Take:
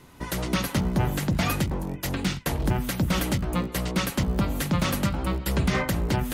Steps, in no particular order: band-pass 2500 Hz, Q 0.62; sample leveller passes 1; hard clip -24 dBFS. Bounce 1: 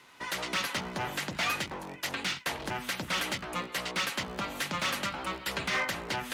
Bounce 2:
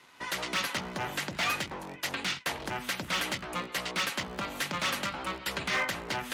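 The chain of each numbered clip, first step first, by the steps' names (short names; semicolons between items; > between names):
band-pass > hard clip > sample leveller; sample leveller > band-pass > hard clip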